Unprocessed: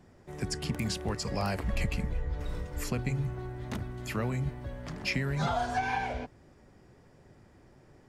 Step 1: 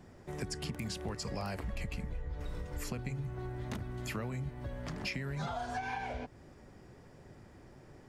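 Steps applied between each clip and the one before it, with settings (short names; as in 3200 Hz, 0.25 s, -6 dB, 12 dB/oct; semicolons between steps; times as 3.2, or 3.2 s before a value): compressor 4:1, threshold -39 dBFS, peak gain reduction 12 dB; gain +2.5 dB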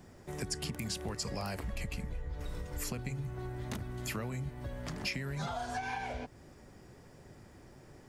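high shelf 5400 Hz +8 dB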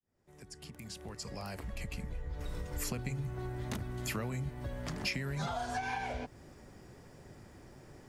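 opening faded in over 2.68 s; gain +1 dB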